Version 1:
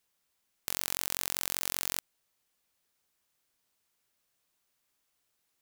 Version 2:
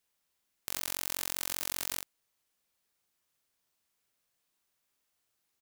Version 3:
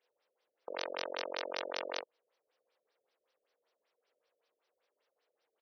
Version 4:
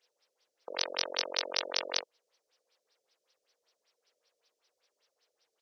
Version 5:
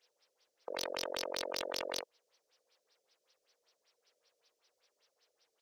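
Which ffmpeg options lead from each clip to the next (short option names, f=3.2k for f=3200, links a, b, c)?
-filter_complex "[0:a]asplit=2[a][b];[b]adelay=41,volume=-5.5dB[c];[a][c]amix=inputs=2:normalize=0,volume=-3dB"
-af "highpass=f=490:t=q:w=4.9,afftfilt=real='re*lt(b*sr/1024,620*pow(6200/620,0.5+0.5*sin(2*PI*5.2*pts/sr)))':imag='im*lt(b*sr/1024,620*pow(6200/620,0.5+0.5*sin(2*PI*5.2*pts/sr)))':win_size=1024:overlap=0.75,volume=3dB"
-af "equalizer=f=5.7k:w=0.77:g=15"
-af "alimiter=limit=-14dB:level=0:latency=1:release=22,asoftclip=type=tanh:threshold=-24.5dB,volume=1dB"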